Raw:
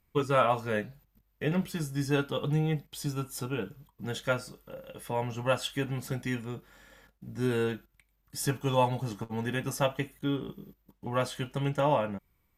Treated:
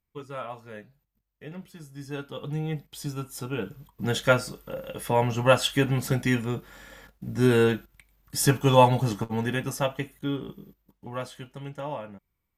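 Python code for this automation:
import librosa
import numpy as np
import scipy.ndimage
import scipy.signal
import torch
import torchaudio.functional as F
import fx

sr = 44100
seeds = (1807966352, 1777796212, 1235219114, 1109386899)

y = fx.gain(x, sr, db=fx.line((1.78, -11.5), (2.83, 0.0), (3.39, 0.0), (4.04, 8.5), (9.09, 8.5), (9.82, 1.0), (10.56, 1.0), (11.59, -8.0)))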